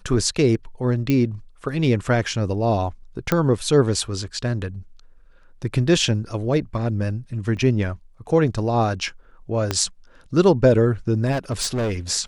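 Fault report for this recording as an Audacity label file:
1.100000	1.100000	pop -9 dBFS
3.320000	3.320000	pop -6 dBFS
7.570000	7.570000	gap 2.7 ms
9.710000	9.710000	pop -7 dBFS
11.310000	11.940000	clipped -19.5 dBFS

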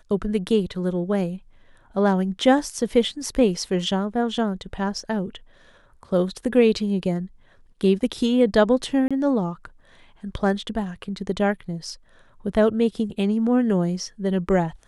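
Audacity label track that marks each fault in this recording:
9.080000	9.110000	gap 26 ms

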